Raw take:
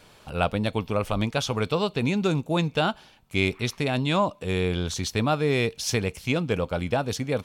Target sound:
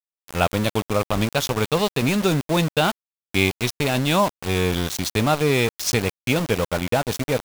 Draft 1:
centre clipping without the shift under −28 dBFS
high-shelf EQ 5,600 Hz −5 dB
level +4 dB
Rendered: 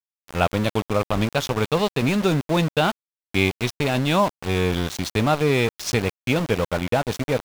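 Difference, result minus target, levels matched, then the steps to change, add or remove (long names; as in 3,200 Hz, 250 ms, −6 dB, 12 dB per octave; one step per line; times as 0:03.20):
8,000 Hz band −4.5 dB
change: high-shelf EQ 5,600 Hz +3.5 dB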